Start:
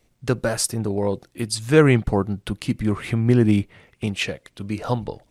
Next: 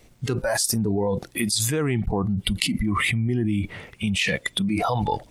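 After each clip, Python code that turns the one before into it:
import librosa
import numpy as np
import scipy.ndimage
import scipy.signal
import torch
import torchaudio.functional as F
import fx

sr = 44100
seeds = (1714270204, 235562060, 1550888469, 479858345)

y = fx.noise_reduce_blind(x, sr, reduce_db=17)
y = fx.env_flatten(y, sr, amount_pct=100)
y = F.gain(torch.from_numpy(y), -13.0).numpy()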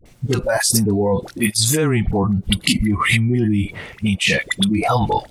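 y = fx.dispersion(x, sr, late='highs', ms=57.0, hz=660.0)
y = F.gain(torch.from_numpy(y), 6.0).numpy()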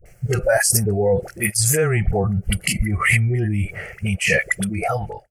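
y = fx.fade_out_tail(x, sr, length_s=0.67)
y = fx.fixed_phaser(y, sr, hz=1000.0, stages=6)
y = F.gain(torch.from_numpy(y), 2.5).numpy()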